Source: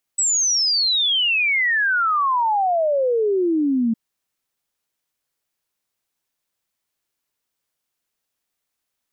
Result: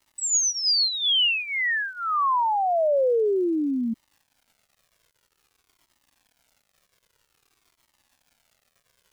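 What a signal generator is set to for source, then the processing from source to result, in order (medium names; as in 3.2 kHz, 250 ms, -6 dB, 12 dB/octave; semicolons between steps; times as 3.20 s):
log sweep 8 kHz -> 220 Hz 3.76 s -16 dBFS
crackle 280 per s -45 dBFS; Shepard-style flanger falling 0.51 Hz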